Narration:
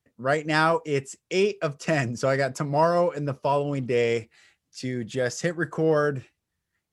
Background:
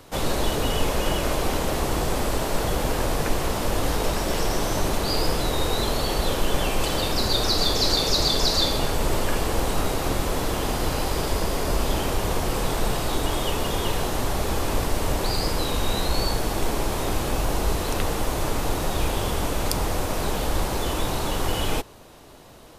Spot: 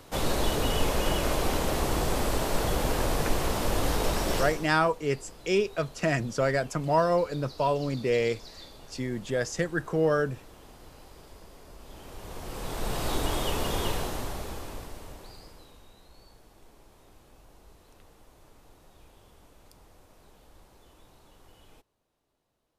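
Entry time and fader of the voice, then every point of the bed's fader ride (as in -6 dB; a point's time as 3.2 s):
4.15 s, -2.5 dB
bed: 4.39 s -3 dB
4.79 s -25.5 dB
11.78 s -25.5 dB
13.07 s -4 dB
13.86 s -4 dB
15.95 s -31.5 dB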